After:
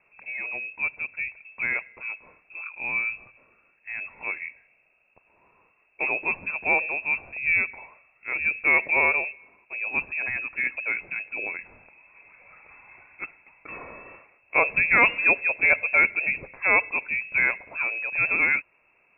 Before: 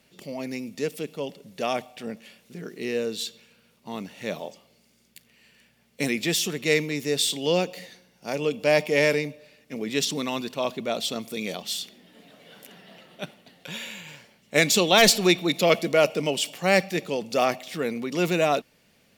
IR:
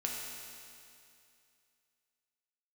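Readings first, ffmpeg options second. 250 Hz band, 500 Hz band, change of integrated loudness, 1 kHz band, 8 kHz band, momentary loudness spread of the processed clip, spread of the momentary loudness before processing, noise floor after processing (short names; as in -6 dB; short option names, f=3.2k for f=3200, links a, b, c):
-14.5 dB, -11.5 dB, +1.0 dB, -2.0 dB, under -40 dB, 18 LU, 18 LU, -65 dBFS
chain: -af "lowpass=f=2.4k:t=q:w=0.5098,lowpass=f=2.4k:t=q:w=0.6013,lowpass=f=2.4k:t=q:w=0.9,lowpass=f=2.4k:t=q:w=2.563,afreqshift=-2800"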